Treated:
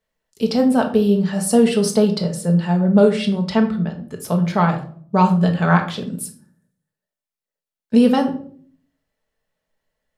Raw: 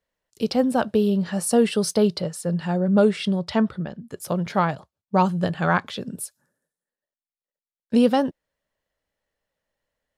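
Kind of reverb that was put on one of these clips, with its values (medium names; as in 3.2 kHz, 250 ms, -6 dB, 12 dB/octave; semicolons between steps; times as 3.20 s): simulated room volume 510 m³, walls furnished, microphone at 1.5 m; trim +1.5 dB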